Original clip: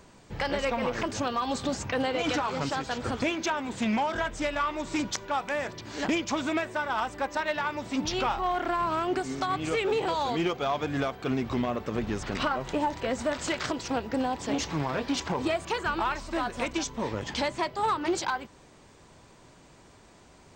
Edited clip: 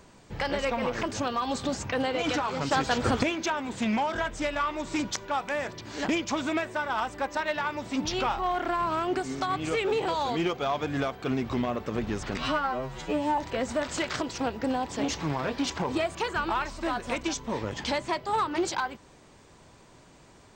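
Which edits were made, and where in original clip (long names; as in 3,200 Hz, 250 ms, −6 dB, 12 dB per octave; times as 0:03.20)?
0:02.71–0:03.23: clip gain +6 dB
0:12.38–0:12.88: time-stretch 2×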